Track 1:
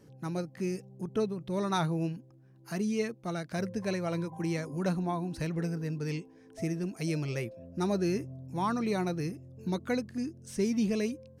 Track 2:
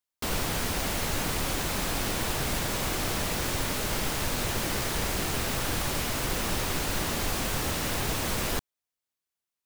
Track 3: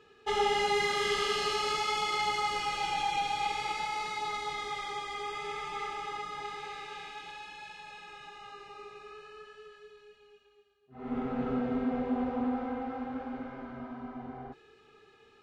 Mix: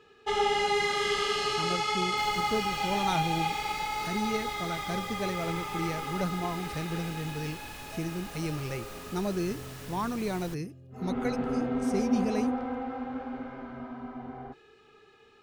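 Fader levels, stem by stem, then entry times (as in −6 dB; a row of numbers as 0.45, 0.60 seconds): −1.5, −16.0, +1.5 decibels; 1.35, 1.95, 0.00 seconds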